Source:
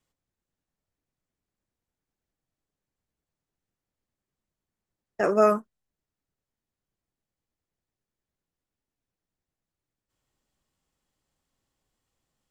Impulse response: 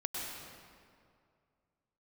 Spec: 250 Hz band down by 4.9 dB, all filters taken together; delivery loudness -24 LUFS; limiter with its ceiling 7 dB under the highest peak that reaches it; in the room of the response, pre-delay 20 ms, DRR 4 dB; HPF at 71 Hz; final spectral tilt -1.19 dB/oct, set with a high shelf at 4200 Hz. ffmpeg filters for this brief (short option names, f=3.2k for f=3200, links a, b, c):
-filter_complex "[0:a]highpass=71,equalizer=f=250:t=o:g=-6.5,highshelf=f=4.2k:g=-3.5,alimiter=limit=-17dB:level=0:latency=1,asplit=2[a][b];[1:a]atrim=start_sample=2205,adelay=20[c];[b][c]afir=irnorm=-1:irlink=0,volume=-7dB[d];[a][d]amix=inputs=2:normalize=0,volume=5.5dB"